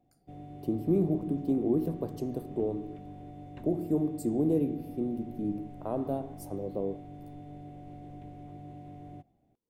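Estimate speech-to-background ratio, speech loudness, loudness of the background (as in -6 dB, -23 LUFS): 14.5 dB, -32.0 LUFS, -46.5 LUFS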